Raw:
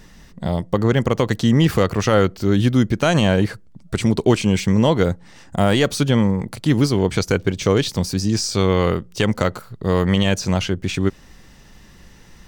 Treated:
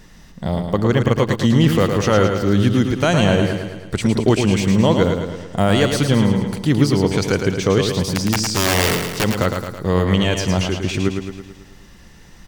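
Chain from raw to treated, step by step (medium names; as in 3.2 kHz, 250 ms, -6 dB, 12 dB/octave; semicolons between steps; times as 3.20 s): 8.00–9.24 s: integer overflow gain 11 dB; feedback delay 109 ms, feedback 56%, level -6 dB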